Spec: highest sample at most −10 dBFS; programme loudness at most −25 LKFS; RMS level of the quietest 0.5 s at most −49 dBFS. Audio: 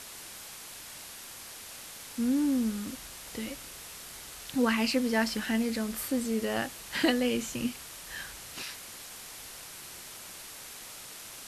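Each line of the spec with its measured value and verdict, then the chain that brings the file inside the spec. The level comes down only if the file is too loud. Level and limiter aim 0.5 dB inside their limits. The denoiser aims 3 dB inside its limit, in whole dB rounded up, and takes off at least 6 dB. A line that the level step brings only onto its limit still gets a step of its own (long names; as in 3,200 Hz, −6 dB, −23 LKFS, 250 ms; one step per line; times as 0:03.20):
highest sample −12.5 dBFS: in spec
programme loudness −33.0 LKFS: in spec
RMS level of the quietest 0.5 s −45 dBFS: out of spec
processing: broadband denoise 7 dB, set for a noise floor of −45 dBFS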